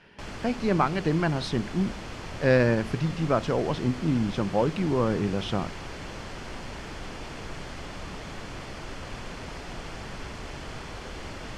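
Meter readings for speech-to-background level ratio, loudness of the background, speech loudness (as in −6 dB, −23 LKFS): 12.5 dB, −39.0 LKFS, −26.5 LKFS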